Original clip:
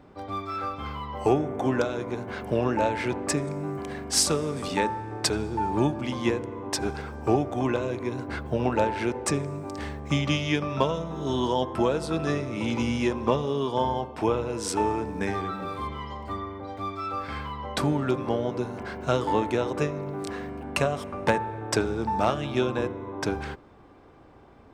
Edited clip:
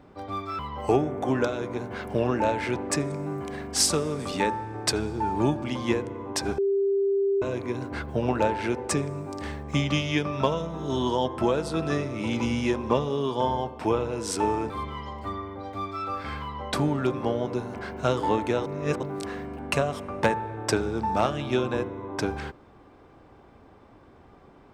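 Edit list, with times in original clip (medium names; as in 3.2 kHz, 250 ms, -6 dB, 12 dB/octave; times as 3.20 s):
0.59–0.96 s: delete
6.95–7.79 s: bleep 395 Hz -20.5 dBFS
15.07–15.74 s: delete
19.70–20.07 s: reverse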